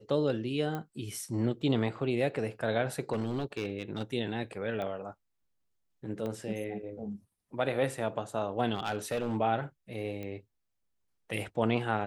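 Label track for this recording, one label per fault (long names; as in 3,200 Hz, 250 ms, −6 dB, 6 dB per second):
0.750000	0.750000	click −23 dBFS
3.120000	4.030000	clipping −27.5 dBFS
4.820000	4.820000	click −25 dBFS
6.260000	6.260000	click −25 dBFS
8.740000	9.370000	clipping −26.5 dBFS
10.230000	10.230000	click −27 dBFS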